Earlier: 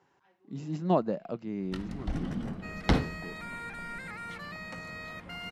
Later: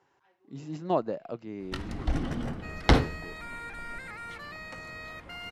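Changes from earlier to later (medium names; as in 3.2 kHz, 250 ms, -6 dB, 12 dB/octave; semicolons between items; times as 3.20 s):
first sound +6.0 dB; master: add peaking EQ 190 Hz -9 dB 0.57 oct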